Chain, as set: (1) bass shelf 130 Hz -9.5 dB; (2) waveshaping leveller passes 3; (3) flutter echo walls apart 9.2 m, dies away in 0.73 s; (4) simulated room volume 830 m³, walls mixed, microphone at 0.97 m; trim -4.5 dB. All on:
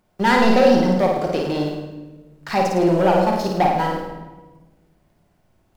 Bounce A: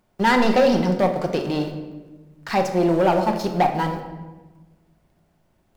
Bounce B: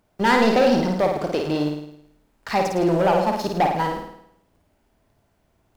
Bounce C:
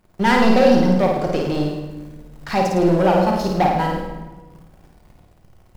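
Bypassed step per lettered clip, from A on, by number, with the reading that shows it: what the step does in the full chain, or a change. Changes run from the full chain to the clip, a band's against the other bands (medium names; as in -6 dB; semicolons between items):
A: 3, loudness change -2.5 LU; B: 4, momentary loudness spread change -6 LU; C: 1, 125 Hz band +3.0 dB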